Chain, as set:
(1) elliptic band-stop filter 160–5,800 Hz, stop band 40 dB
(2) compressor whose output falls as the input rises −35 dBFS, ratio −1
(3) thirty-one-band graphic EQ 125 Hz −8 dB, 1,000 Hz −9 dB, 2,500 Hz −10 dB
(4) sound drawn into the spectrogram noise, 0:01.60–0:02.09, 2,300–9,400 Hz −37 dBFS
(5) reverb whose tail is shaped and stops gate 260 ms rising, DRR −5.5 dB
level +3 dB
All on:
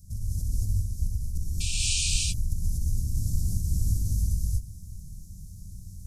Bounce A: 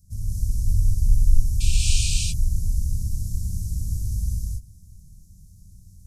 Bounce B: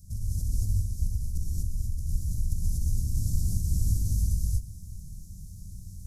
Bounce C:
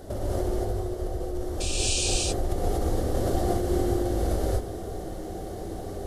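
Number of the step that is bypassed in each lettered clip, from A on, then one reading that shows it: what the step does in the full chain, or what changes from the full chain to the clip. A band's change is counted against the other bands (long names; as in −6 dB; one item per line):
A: 2, change in momentary loudness spread −11 LU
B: 4, 4 kHz band −18.0 dB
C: 1, 250 Hz band +12.0 dB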